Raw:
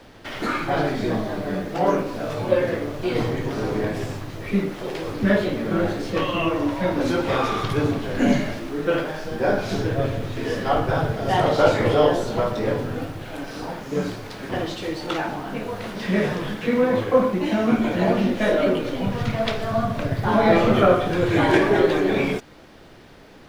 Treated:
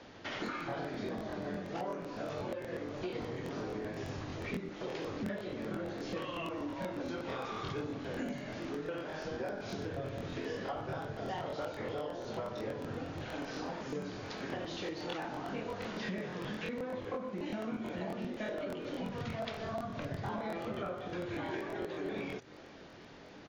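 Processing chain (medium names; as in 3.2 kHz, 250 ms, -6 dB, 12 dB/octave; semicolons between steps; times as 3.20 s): high-pass 89 Hz 6 dB/octave; hum notches 60/120 Hz; compression 12:1, threshold -30 dBFS, peak gain reduction 19 dB; brick-wall FIR low-pass 7.1 kHz; delay 500 ms -22.5 dB; crackling interface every 0.12 s, samples 1024, repeat, from 0.44 s; trim -5.5 dB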